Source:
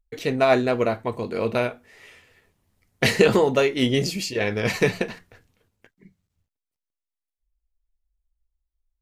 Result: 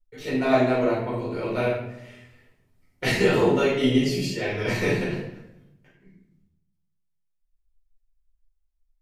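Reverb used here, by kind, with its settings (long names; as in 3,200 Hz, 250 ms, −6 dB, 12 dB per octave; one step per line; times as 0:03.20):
rectangular room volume 240 cubic metres, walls mixed, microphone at 4.5 metres
level −15 dB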